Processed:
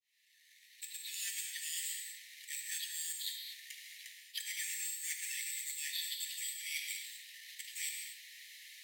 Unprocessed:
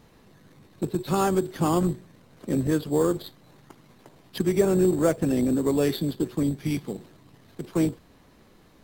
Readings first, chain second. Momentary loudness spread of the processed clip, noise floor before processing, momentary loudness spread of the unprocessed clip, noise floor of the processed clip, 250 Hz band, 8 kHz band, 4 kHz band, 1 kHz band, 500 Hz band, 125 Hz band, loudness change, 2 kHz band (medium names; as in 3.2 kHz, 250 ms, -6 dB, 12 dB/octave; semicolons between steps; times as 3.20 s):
12 LU, -56 dBFS, 15 LU, -67 dBFS, under -40 dB, +2.0 dB, +1.0 dB, under -40 dB, under -40 dB, under -40 dB, -14.5 dB, -2.0 dB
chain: fade-in on the opening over 1.70 s; Chebyshev high-pass 1.8 kHz, order 8; reverse; compression 6:1, threshold -50 dBFS, peak gain reduction 17.5 dB; reverse; gated-style reverb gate 270 ms flat, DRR 2 dB; trim +11 dB